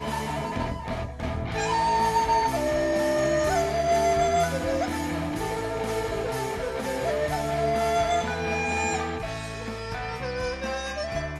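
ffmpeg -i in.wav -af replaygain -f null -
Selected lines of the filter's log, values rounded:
track_gain = +7.4 dB
track_peak = 0.169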